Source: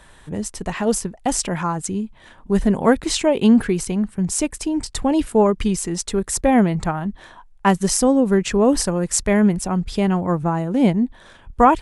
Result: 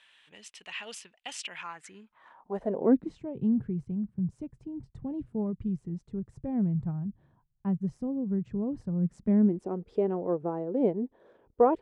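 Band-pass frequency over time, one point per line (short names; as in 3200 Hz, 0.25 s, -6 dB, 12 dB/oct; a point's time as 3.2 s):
band-pass, Q 3.5
1.59 s 2800 Hz
2.7 s 570 Hz
3.22 s 130 Hz
8.89 s 130 Hz
9.77 s 440 Hz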